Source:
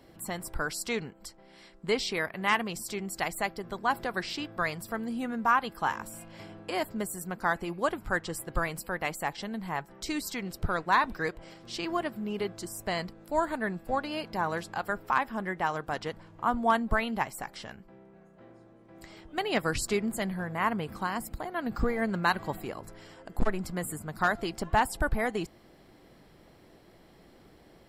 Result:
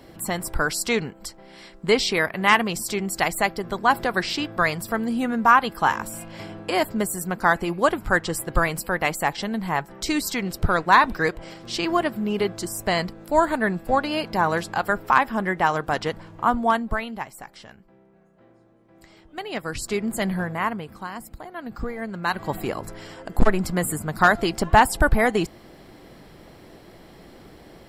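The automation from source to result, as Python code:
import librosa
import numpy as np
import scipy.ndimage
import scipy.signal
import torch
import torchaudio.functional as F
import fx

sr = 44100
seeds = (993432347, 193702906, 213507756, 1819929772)

y = fx.gain(x, sr, db=fx.line((16.35, 9.0), (17.19, -2.0), (19.63, -2.0), (20.36, 9.0), (20.9, -2.0), (22.15, -2.0), (22.64, 10.0)))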